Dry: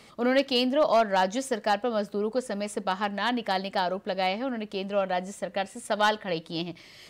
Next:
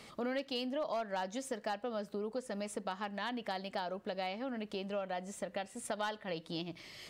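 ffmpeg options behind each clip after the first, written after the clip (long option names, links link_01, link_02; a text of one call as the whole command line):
ffmpeg -i in.wav -af "acompressor=threshold=-37dB:ratio=3,volume=-1.5dB" out.wav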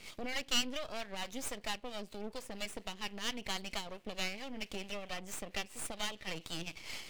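ffmpeg -i in.wav -filter_complex "[0:a]acrossover=split=510[link_01][link_02];[link_01]aeval=exprs='val(0)*(1-0.7/2+0.7/2*cos(2*PI*4.4*n/s))':channel_layout=same[link_03];[link_02]aeval=exprs='val(0)*(1-0.7/2-0.7/2*cos(2*PI*4.4*n/s))':channel_layout=same[link_04];[link_03][link_04]amix=inputs=2:normalize=0,highshelf=frequency=1800:width_type=q:width=3:gain=8.5,aeval=exprs='max(val(0),0)':channel_layout=same,volume=3dB" out.wav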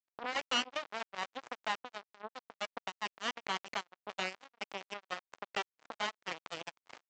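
ffmpeg -i in.wav -af "aresample=16000,acrusher=bits=4:mix=0:aa=0.5,aresample=44100,bandpass=frequency=940:width_type=q:width=0.76:csg=0,volume=7dB" out.wav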